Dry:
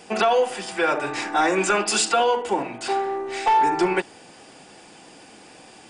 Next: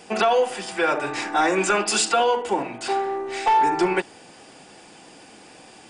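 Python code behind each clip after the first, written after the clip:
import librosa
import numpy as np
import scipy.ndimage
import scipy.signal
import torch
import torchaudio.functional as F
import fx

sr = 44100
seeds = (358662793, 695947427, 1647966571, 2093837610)

y = x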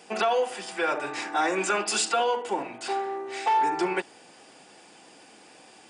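y = fx.highpass(x, sr, hz=240.0, slope=6)
y = y * 10.0 ** (-4.5 / 20.0)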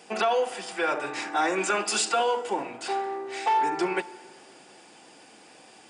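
y = fx.rev_plate(x, sr, seeds[0], rt60_s=2.5, hf_ratio=0.65, predelay_ms=0, drr_db=18.5)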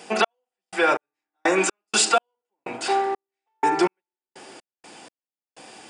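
y = fx.step_gate(x, sr, bpm=62, pattern='x..x..x.x..x', floor_db=-60.0, edge_ms=4.5)
y = y * 10.0 ** (7.0 / 20.0)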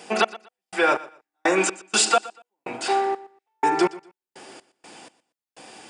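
y = fx.echo_feedback(x, sr, ms=120, feedback_pct=23, wet_db=-19.0)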